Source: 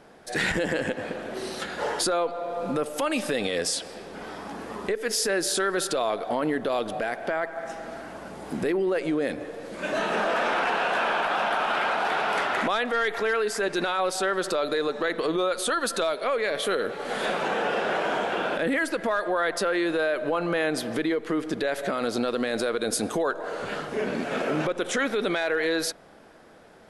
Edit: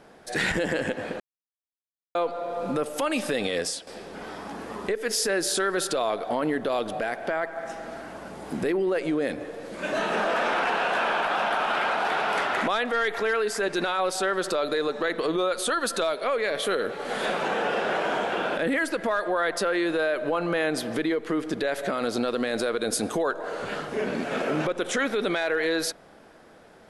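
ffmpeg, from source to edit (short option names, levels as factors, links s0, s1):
-filter_complex "[0:a]asplit=4[s0][s1][s2][s3];[s0]atrim=end=1.2,asetpts=PTS-STARTPTS,afade=t=out:st=1.196:d=0.004:c=hsin[s4];[s1]atrim=start=1.2:end=2.15,asetpts=PTS-STARTPTS,volume=0[s5];[s2]atrim=start=2.15:end=3.87,asetpts=PTS-STARTPTS,afade=t=in:d=0.004:c=hsin,afade=t=out:st=1.43:d=0.29:silence=0.251189[s6];[s3]atrim=start=3.87,asetpts=PTS-STARTPTS,afade=t=in:d=0.004:c=hsin:silence=0.251189[s7];[s4][s5][s6][s7]concat=n=4:v=0:a=1"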